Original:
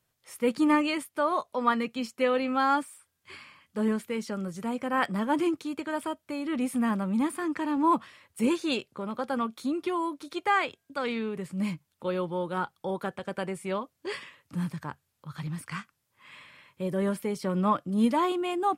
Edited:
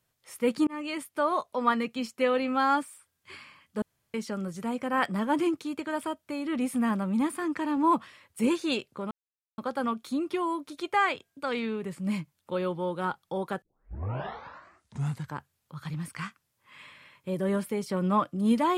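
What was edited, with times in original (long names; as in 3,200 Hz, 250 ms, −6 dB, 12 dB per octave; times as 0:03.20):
0:00.67–0:01.09: fade in
0:03.82–0:04.14: fill with room tone
0:09.11: splice in silence 0.47 s
0:13.15: tape start 1.75 s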